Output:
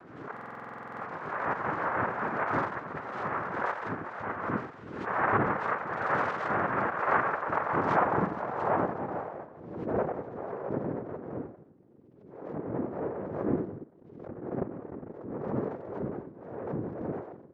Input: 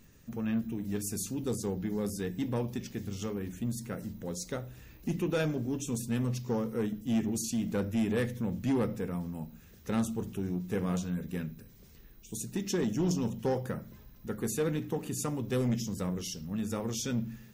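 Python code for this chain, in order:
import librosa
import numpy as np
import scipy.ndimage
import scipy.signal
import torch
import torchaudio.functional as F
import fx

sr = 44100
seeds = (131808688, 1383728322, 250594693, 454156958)

p1 = fx.octave_mirror(x, sr, pivot_hz=480.0)
p2 = fx.peak_eq(p1, sr, hz=1500.0, db=-6.0, octaves=0.26)
p3 = p2 + fx.echo_single(p2, sr, ms=87, db=-8.5, dry=0)
p4 = fx.noise_vocoder(p3, sr, seeds[0], bands=3)
p5 = fx.filter_sweep_lowpass(p4, sr, from_hz=1300.0, to_hz=410.0, start_s=7.21, end_s=11.06, q=1.3)
p6 = fx.level_steps(p5, sr, step_db=15, at=(13.69, 15.33))
p7 = fx.buffer_glitch(p6, sr, at_s=(0.32,), block=2048, repeats=14)
p8 = fx.pre_swell(p7, sr, db_per_s=54.0)
y = F.gain(torch.from_numpy(p8), 4.5).numpy()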